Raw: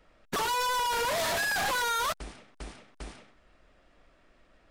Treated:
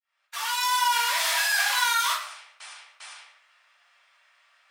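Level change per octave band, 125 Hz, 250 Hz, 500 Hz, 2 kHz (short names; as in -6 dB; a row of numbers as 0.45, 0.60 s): under -40 dB, under -40 dB, -10.5 dB, +5.5 dB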